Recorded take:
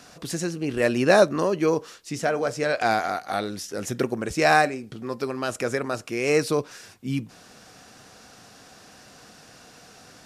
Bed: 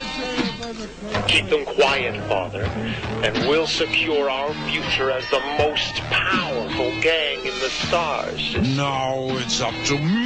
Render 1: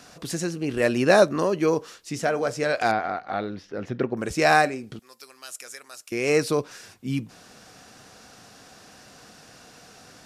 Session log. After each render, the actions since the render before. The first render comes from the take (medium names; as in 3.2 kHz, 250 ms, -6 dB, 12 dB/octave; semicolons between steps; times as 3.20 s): 2.91–4.17 s: distance through air 310 m; 4.99–6.12 s: differentiator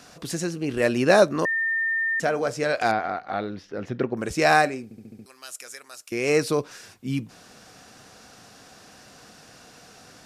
1.45–2.20 s: bleep 1.81 kHz -21.5 dBFS; 4.84 s: stutter in place 0.07 s, 6 plays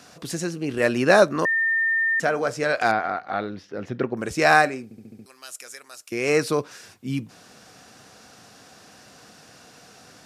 high-pass 66 Hz; dynamic bell 1.4 kHz, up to +4 dB, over -35 dBFS, Q 1.2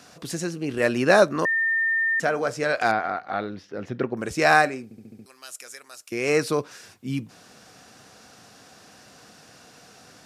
trim -1 dB